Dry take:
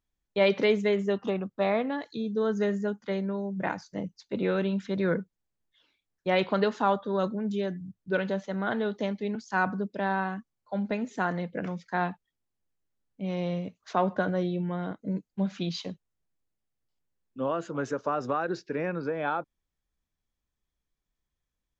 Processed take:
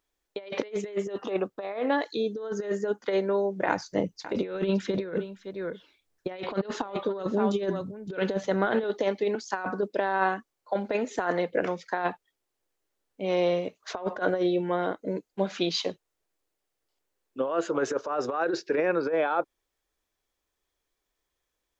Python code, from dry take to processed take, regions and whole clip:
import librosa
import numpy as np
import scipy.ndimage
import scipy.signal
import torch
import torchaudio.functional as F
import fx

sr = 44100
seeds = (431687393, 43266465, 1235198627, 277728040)

y = fx.chain(x, sr, fx.bass_treble(bass_db=10, treble_db=1),
    fx.echo_single(ms=563, db=-16.5), at=(3.68, 8.84))
y = fx.low_shelf_res(y, sr, hz=270.0, db=-11.0, q=1.5)
y = fx.over_compress(y, sr, threshold_db=-30.0, ratio=-0.5)
y = y * librosa.db_to_amplitude(4.0)